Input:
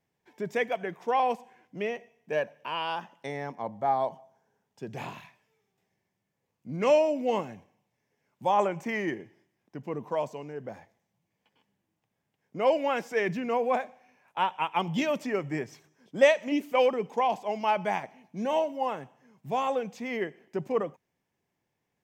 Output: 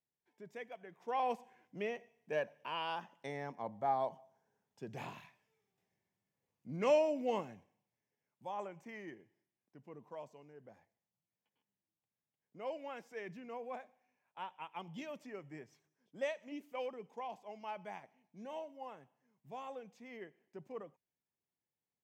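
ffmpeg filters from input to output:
ffmpeg -i in.wav -af "volume=-7.5dB,afade=type=in:start_time=0.9:duration=0.43:silence=0.266073,afade=type=out:start_time=7.22:duration=1.25:silence=0.298538" out.wav

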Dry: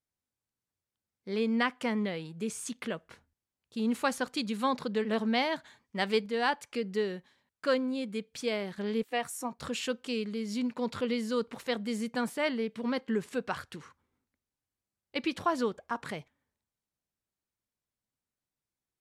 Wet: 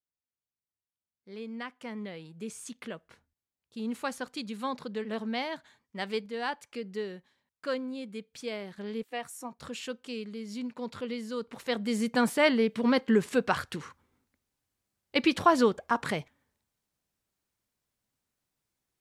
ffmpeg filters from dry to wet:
ffmpeg -i in.wav -af "volume=7dB,afade=type=in:start_time=1.73:duration=0.65:silence=0.473151,afade=type=in:start_time=11.41:duration=0.89:silence=0.266073" out.wav

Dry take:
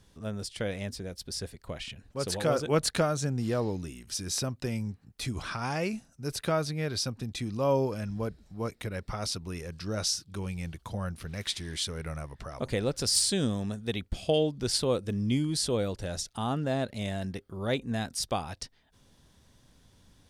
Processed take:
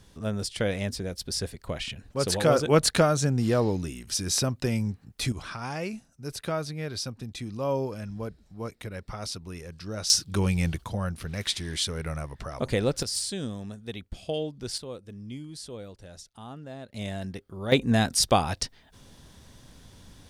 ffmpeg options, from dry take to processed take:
ffmpeg -i in.wav -af "asetnsamples=nb_out_samples=441:pad=0,asendcmd='5.32 volume volume -2dB;10.1 volume volume 10.5dB;10.84 volume volume 4dB;13.03 volume volume -5dB;14.78 volume volume -11.5dB;16.94 volume volume -0.5dB;17.72 volume volume 9.5dB',volume=5.5dB" out.wav

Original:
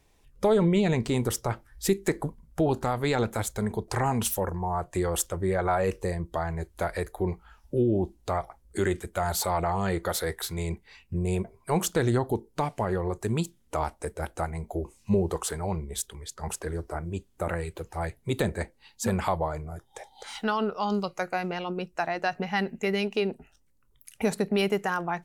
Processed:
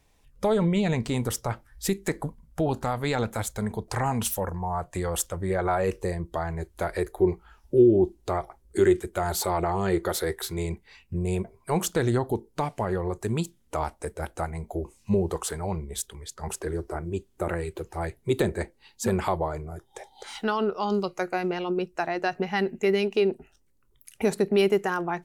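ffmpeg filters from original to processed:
ffmpeg -i in.wav -af "asetnsamples=nb_out_samples=441:pad=0,asendcmd='5.5 equalizer g 3;6.87 equalizer g 9.5;10.66 equalizer g 1;16.47 equalizer g 8.5',equalizer=frequency=370:width_type=o:width=0.34:gain=-5.5" out.wav

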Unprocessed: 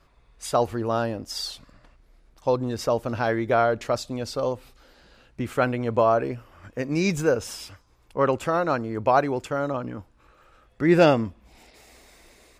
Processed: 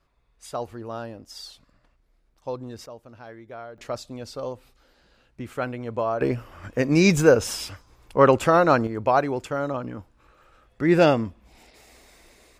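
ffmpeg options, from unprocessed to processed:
ffmpeg -i in.wav -af "asetnsamples=nb_out_samples=441:pad=0,asendcmd='2.86 volume volume -18.5dB;3.78 volume volume -6dB;6.21 volume volume 6dB;8.87 volume volume -0.5dB',volume=-9dB" out.wav

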